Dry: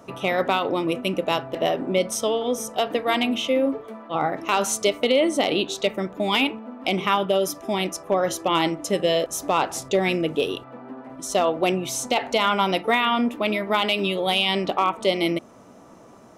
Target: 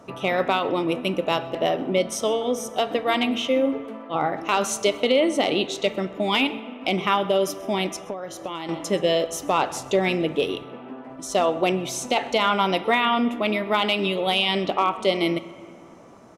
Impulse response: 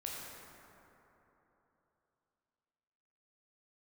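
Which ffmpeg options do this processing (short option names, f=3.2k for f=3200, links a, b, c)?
-filter_complex "[0:a]highshelf=f=10k:g=-8,aecho=1:1:129:0.0708,asplit=2[a][b];[1:a]atrim=start_sample=2205,asetrate=70560,aresample=44100[c];[b][c]afir=irnorm=-1:irlink=0,volume=-9.5dB[d];[a][d]amix=inputs=2:normalize=0,asettb=1/sr,asplit=3[e][f][g];[e]atrim=end=8.094[h];[f]atrim=start=8.09:end=8.69,asetpts=PTS-STARTPTS,afade=t=in:d=0.004:c=qsin,afade=t=out:st=0.596:d=0.004:c=qsin,acompressor=threshold=-28dB:ratio=10[i];[g]atrim=start=8.686[j];[h][i]acrossfade=d=0.004:c1=hsin:c2=qsin[k];[k][j]acrossfade=d=0.004:c1=qsin:c2=hsin,volume=-1dB"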